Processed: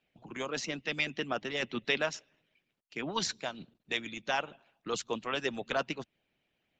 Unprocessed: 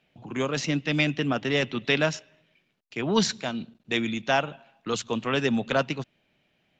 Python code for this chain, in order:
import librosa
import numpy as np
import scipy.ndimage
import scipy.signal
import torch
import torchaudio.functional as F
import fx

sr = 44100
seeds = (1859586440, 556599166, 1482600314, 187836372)

y = fx.hpss(x, sr, part='harmonic', gain_db=-14)
y = F.gain(torch.from_numpy(y), -4.5).numpy()